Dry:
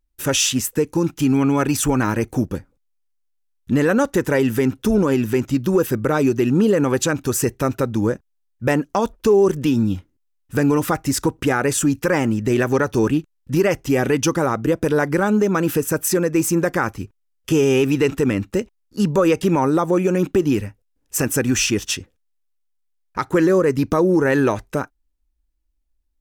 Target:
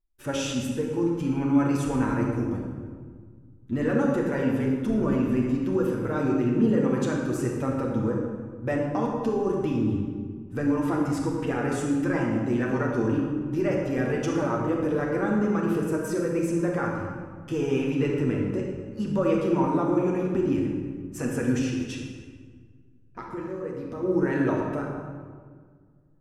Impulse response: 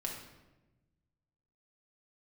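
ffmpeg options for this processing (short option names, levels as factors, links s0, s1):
-filter_complex "[0:a]equalizer=f=16000:t=o:w=2:g=-12.5,asplit=3[s0][s1][s2];[s0]afade=t=out:st=21.58:d=0.02[s3];[s1]acompressor=threshold=0.0631:ratio=10,afade=t=in:st=21.58:d=0.02,afade=t=out:st=24.02:d=0.02[s4];[s2]afade=t=in:st=24.02:d=0.02[s5];[s3][s4][s5]amix=inputs=3:normalize=0,flanger=delay=2.9:depth=1.4:regen=68:speed=0.82:shape=triangular[s6];[1:a]atrim=start_sample=2205,asetrate=23814,aresample=44100[s7];[s6][s7]afir=irnorm=-1:irlink=0,volume=0.422"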